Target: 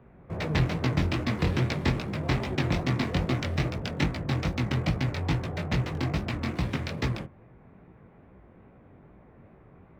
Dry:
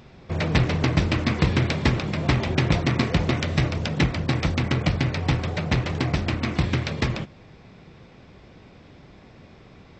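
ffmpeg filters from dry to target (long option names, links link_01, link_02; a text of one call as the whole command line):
ffmpeg -i in.wav -filter_complex "[0:a]acrossover=split=280|360|2000[link_01][link_02][link_03][link_04];[link_04]aeval=exprs='sgn(val(0))*max(abs(val(0))-0.00562,0)':channel_layout=same[link_05];[link_01][link_02][link_03][link_05]amix=inputs=4:normalize=0,flanger=delay=15.5:depth=7.5:speed=2.4,volume=-2dB" out.wav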